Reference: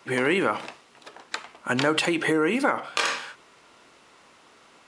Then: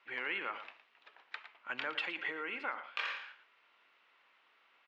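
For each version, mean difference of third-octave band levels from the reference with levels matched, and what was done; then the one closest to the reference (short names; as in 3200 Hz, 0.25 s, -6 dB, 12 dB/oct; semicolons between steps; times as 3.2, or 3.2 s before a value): 7.0 dB: LPF 2700 Hz 24 dB/oct; differentiator; on a send: echo 0.113 s -12.5 dB; on the sum: gain +1 dB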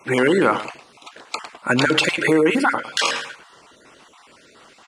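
2.5 dB: random spectral dropouts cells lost 31%; in parallel at -9.5 dB: overloaded stage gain 14.5 dB; on the sum: echo 0.107 s -13 dB; gain +4.5 dB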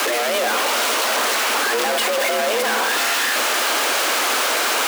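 18.5 dB: infinite clipping; frequency shift +220 Hz; split-band echo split 560 Hz, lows 0.131 s, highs 0.338 s, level -9 dB; gain +7.5 dB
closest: second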